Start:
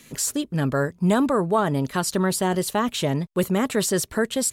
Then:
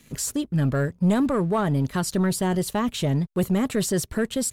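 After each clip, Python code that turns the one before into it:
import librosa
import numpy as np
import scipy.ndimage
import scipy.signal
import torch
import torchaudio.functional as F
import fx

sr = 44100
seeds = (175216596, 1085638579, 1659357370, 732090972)

y = fx.low_shelf(x, sr, hz=190.0, db=11.5)
y = fx.leveller(y, sr, passes=1)
y = F.gain(torch.from_numpy(y), -7.0).numpy()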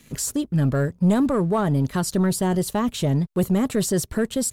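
y = fx.dynamic_eq(x, sr, hz=2300.0, q=0.83, threshold_db=-41.0, ratio=4.0, max_db=-4)
y = F.gain(torch.from_numpy(y), 2.0).numpy()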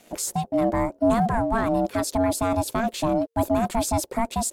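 y = x * np.sin(2.0 * np.pi * 460.0 * np.arange(len(x)) / sr)
y = F.gain(torch.from_numpy(y), 1.0).numpy()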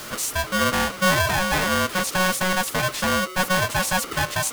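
y = x + 0.5 * 10.0 ** (-30.5 / 20.0) * np.sign(x)
y = fx.hum_notches(y, sr, base_hz=60, count=5)
y = y * np.sign(np.sin(2.0 * np.pi * 830.0 * np.arange(len(y)) / sr))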